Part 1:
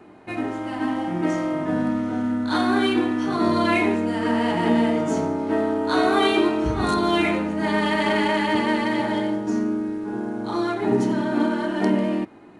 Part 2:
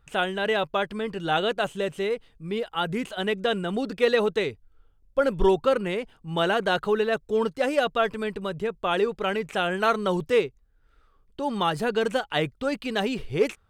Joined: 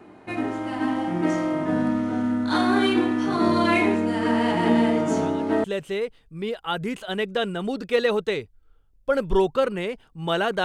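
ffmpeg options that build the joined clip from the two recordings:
-filter_complex "[1:a]asplit=2[s0][s1];[0:a]apad=whole_dur=10.64,atrim=end=10.64,atrim=end=5.642[s2];[s1]atrim=start=1.728:end=6.73[s3];[s0]atrim=start=0.9:end=1.73,asetpts=PTS-STARTPTS,volume=0.133,afade=t=in:d=0.004:c=hsin,afade=t=out:st=0.826:d=0.004:c=hsin,adelay=212121S[s4];[s2][s3]acrossfade=d=0.004:c1=hsin:c2=hsin[s5];[s5][s4]amix=inputs=2:normalize=0"

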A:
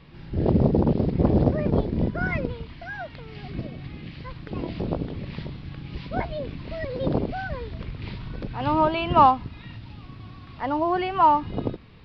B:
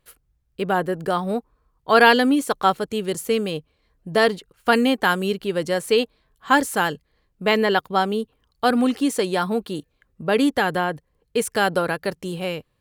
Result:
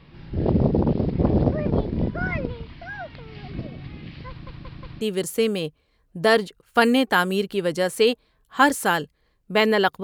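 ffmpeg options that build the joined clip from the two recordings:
-filter_complex "[0:a]apad=whole_dur=10.03,atrim=end=10.03,asplit=4[s0][s1][s2][s3];[s0]atrim=end=4.472[s4];[s1]atrim=start=4.288:end=4.472[s5];[s2]atrim=start=4.288:end=4.472[s6];[s3]atrim=start=4.288:end=4.472[s7];[1:a]atrim=start=2.918:end=7.94[s8];[s4][s5]acrossfade=d=0.004:c1=hsin:c2=hsin[s9];[s9][s6]acrossfade=d=0.004:c1=hsin:c2=hsin[s10];[s10][s7]acrossfade=d=0.004:c1=hsin:c2=hsin[s11];[s11][s8]acrossfade=d=0.004:c1=hsin:c2=hsin"

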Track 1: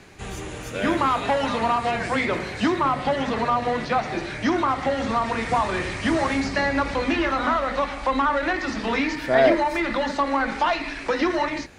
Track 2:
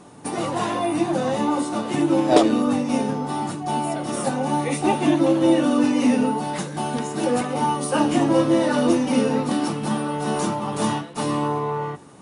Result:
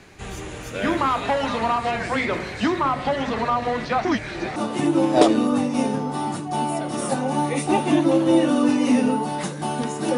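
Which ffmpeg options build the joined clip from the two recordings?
-filter_complex "[0:a]apad=whole_dur=10.17,atrim=end=10.17,asplit=2[s0][s1];[s0]atrim=end=4.052[s2];[s1]atrim=start=4.048:end=4.562,asetpts=PTS-STARTPTS,areverse[s3];[1:a]atrim=start=1.708:end=7.32[s4];[s2][s3]acrossfade=d=0.004:c1=hsin:c2=hsin[s5];[s5][s4]acrossfade=d=0.004:c1=hsin:c2=hsin"

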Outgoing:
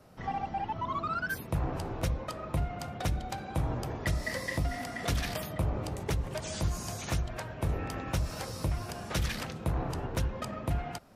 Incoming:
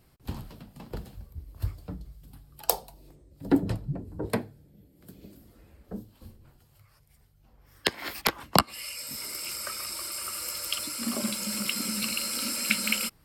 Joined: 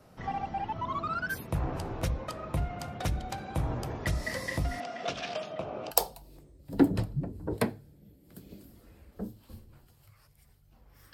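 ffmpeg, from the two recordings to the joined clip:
-filter_complex "[0:a]asettb=1/sr,asplit=3[s0][s1][s2];[s0]atrim=end=4.804[s3];[s1]atrim=start=4.8:end=5.91,asetpts=PTS-STARTPTS,afade=t=in:d=0.004:c=qsin,afade=t=out:st=1.106:d=0.004:c=qsin,highpass=280,equalizer=f=300:t=q:w=4:g=-4,equalizer=f=660:t=q:w=4:g=6,equalizer=f=940:t=q:w=4:g=-4,equalizer=f=1900:t=q:w=4:g=-8,equalizer=f=2700:t=q:w=4:g=4,equalizer=f=4400:t=q:w=4:g=-4,lowpass=f=5600:w=0.5412,lowpass=f=5600:w=1.3066[s4];[s2]atrim=start=5.906[s5];[s3][s4]acrossfade=d=0.004:c1=hsin:c2=qsin[s6];[s6][s5]acrossfade=d=0.004:c1=qsin:c2=hsin,apad=whole_dur=11.13,atrim=end=11.13,atrim=end=5.912[s7];[1:a]atrim=start=2.628:end=7.85[s8];[s7][s8]acrossfade=d=0.004:c1=hsin:c2=hsin"

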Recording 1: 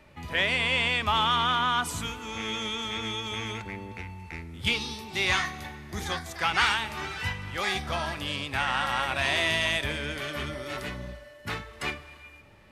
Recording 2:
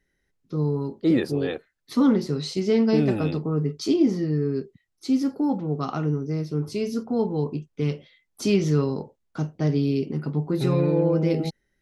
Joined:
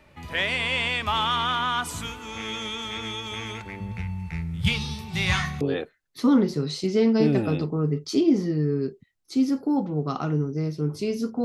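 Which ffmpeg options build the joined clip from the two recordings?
-filter_complex "[0:a]asettb=1/sr,asplit=3[s0][s1][s2];[s0]atrim=end=3.804[s3];[s1]atrim=start=3.8:end=5.61,asetpts=PTS-STARTPTS,afade=t=in:d=0.004:c=qsin,afade=t=out:st=1.806:d=0.004:c=qsin,lowshelf=f=220:t=q:w=3:g=8.5[s4];[s2]atrim=start=5.606[s5];[s3][s4]acrossfade=d=0.004:c1=hsin:c2=qsin[s6];[s6][s5]acrossfade=d=0.004:c1=qsin:c2=hsin,apad=whole_dur=11.44,atrim=end=11.44,atrim=end=5.612[s7];[1:a]atrim=start=1.338:end=7.17[s8];[s7][s8]acrossfade=d=0.004:c1=hsin:c2=hsin"

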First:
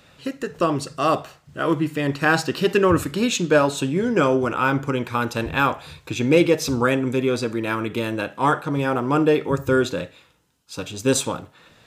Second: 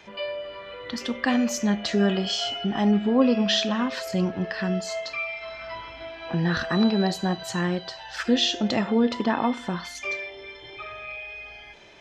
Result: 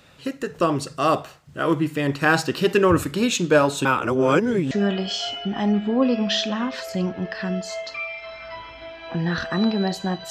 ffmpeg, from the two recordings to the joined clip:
-filter_complex "[0:a]apad=whole_dur=10.3,atrim=end=10.3,asplit=2[s0][s1];[s0]atrim=end=3.852[s2];[s1]atrim=start=3.848:end=4.712,asetpts=PTS-STARTPTS,areverse[s3];[1:a]atrim=start=1.898:end=7.49[s4];[s2][s3]acrossfade=d=0.004:c1=hsin:c2=hsin[s5];[s5][s4]acrossfade=d=0.004:c1=hsin:c2=hsin"

